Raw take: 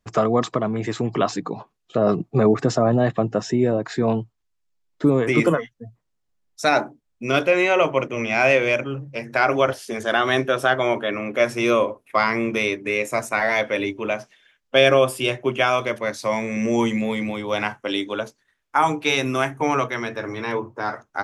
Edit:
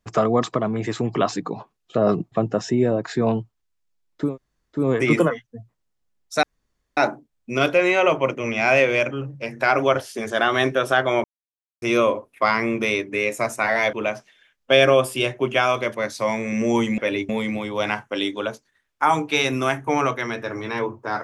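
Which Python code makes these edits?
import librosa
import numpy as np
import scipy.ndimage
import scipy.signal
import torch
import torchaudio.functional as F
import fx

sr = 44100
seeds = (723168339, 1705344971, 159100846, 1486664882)

y = fx.edit(x, sr, fx.cut(start_s=2.32, length_s=0.81),
    fx.insert_room_tone(at_s=5.07, length_s=0.54, crossfade_s=0.24),
    fx.insert_room_tone(at_s=6.7, length_s=0.54),
    fx.silence(start_s=10.97, length_s=0.58),
    fx.move(start_s=13.66, length_s=0.31, to_s=17.02), tone=tone)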